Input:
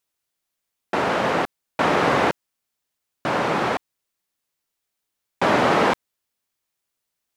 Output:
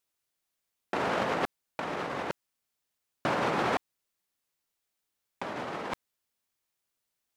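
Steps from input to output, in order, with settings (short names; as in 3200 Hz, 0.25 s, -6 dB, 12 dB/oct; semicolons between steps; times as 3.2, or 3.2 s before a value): negative-ratio compressor -23 dBFS, ratio -0.5; gain -7 dB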